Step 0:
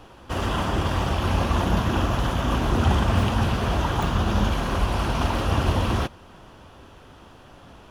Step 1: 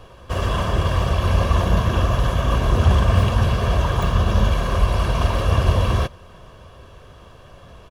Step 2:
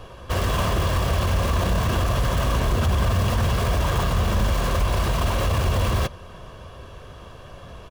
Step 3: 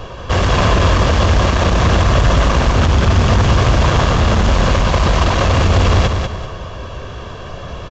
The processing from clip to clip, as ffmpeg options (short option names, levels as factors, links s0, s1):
-af "lowshelf=f=430:g=3,aecho=1:1:1.8:0.57"
-filter_complex "[0:a]asplit=2[s0][s1];[s1]aeval=exprs='(mod(10.6*val(0)+1,2)-1)/10.6':c=same,volume=0.398[s2];[s0][s2]amix=inputs=2:normalize=0,alimiter=limit=0.211:level=0:latency=1:release=20"
-af "aeval=exprs='0.211*sin(PI/2*1.58*val(0)/0.211)':c=same,aecho=1:1:194|388|582|776:0.531|0.17|0.0544|0.0174,aresample=16000,aresample=44100,volume=1.5"